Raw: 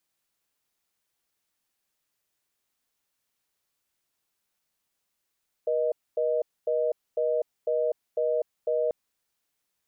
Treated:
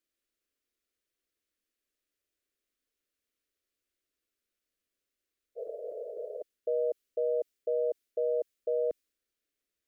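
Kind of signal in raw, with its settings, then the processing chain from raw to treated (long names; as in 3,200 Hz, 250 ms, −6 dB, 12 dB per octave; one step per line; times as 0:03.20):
call progress tone reorder tone, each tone −25.5 dBFS 3.24 s
phaser with its sweep stopped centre 360 Hz, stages 4
healed spectral selection 0:05.59–0:06.39, 390–810 Hz after
one half of a high-frequency compander decoder only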